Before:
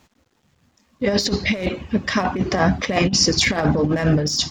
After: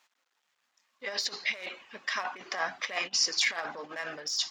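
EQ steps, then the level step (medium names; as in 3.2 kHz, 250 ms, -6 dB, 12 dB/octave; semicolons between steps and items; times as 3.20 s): high-pass 1.1 kHz 12 dB/octave; treble shelf 5.1 kHz -4.5 dB; -6.5 dB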